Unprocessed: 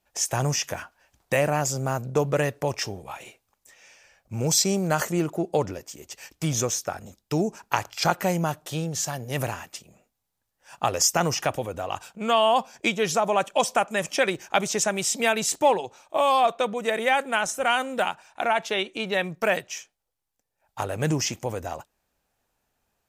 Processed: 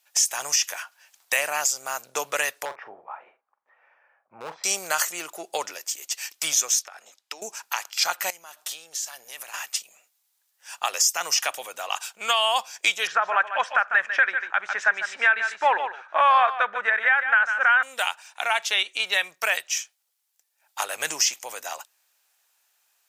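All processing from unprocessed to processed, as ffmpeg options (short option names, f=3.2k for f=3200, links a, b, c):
-filter_complex "[0:a]asettb=1/sr,asplit=3[a][b][c];[a]atrim=end=2.654[d];[b]atrim=start=2.65:end=4.64,asetpts=PTS-STARTPTS,afade=t=in:d=0.004:c=qsin,afade=t=out:st=1.986:d=0.004:c=qsin,lowpass=f=1.3k:w=0.5412,lowpass=f=1.3k:w=1.3066,asoftclip=type=hard:threshold=-20.5dB,asplit=2[e][f];[f]adelay=44,volume=-12dB[g];[e][g]amix=inputs=2:normalize=0,atrim=end_sample=87759[h];[c]atrim=start=4.636[i];[d][h]acrossfade=d=0.004:c1=hsin:c2=qsin[j];[j][i]acrossfade=d=0.004:c1=qsin:c2=hsin,asettb=1/sr,asplit=3[k][l][m];[k]atrim=end=6.794[n];[l]atrim=start=6.79:end=7.42,asetpts=PTS-STARTPTS,afade=t=in:d=0.004:c=qsin,afade=t=out:st=0.626:d=0.004:c=qsin,highpass=310,aemphasis=mode=reproduction:type=50fm,acompressor=threshold=-34dB:ratio=12:attack=3.2:release=140:knee=1:detection=peak[o];[m]atrim=start=7.416[p];[n][o]acrossfade=d=0.004:c1=hsin:c2=qsin[q];[q][p]acrossfade=d=0.004:c1=qsin:c2=hsin,asettb=1/sr,asplit=3[r][s][t];[r]atrim=end=8.304[u];[s]atrim=start=8.3:end=9.54,asetpts=PTS-STARTPTS,afade=t=in:d=0.004:c=qsin,afade=t=out:st=1.236:d=0.004:c=qsin,acompressor=threshold=-37dB:ratio=20:attack=3.2:release=140:knee=1:detection=peak,equalizer=f=130:w=1.1:g=-4[v];[t]atrim=start=9.536[w];[u][v]acrossfade=d=0.004:c1=hsin:c2=qsin[x];[x][w]acrossfade=d=0.004:c1=qsin:c2=hsin,asettb=1/sr,asplit=3[y][z][aa];[y]atrim=end=13.074[ab];[z]atrim=start=13.07:end=17.83,asetpts=PTS-STARTPTS,afade=t=in:d=0.004:c=qsin,afade=t=out:st=4.756:d=0.004:c=qsin,lowpass=f=1.6k:t=q:w=5.6,aecho=1:1:148:0.282,atrim=end_sample=209916[ac];[aa]atrim=start=17.826[ad];[ab][ac]acrossfade=d=0.004:c1=hsin:c2=qsin[ae];[ae][ad]acrossfade=d=0.004:c1=qsin:c2=hsin,highpass=950,highshelf=f=2k:g=10,alimiter=limit=-12dB:level=0:latency=1:release=484,volume=2.5dB"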